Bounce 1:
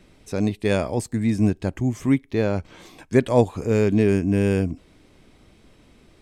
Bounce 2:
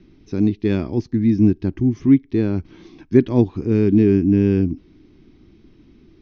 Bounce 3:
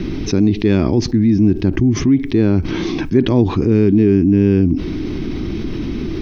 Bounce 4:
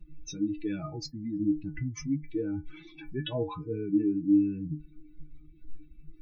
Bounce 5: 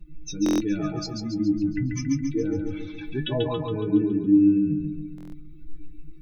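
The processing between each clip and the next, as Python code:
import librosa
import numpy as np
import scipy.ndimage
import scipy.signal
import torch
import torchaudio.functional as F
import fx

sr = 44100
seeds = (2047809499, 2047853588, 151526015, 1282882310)

y1 = scipy.signal.sosfilt(scipy.signal.butter(16, 6100.0, 'lowpass', fs=sr, output='sos'), x)
y1 = fx.low_shelf_res(y1, sr, hz=430.0, db=7.5, q=3.0)
y1 = y1 * librosa.db_to_amplitude(-5.0)
y2 = fx.env_flatten(y1, sr, amount_pct=70)
y2 = y2 * librosa.db_to_amplitude(-1.5)
y3 = fx.bin_expand(y2, sr, power=3.0)
y3 = fx.stiff_resonator(y3, sr, f0_hz=150.0, decay_s=0.25, stiffness=0.008)
y3 = y3 * librosa.db_to_amplitude(1.5)
y4 = fx.echo_feedback(y3, sr, ms=139, feedback_pct=53, wet_db=-4)
y4 = fx.buffer_glitch(y4, sr, at_s=(0.44, 5.16), block=1024, repeats=6)
y4 = y4 * librosa.db_to_amplitude(5.0)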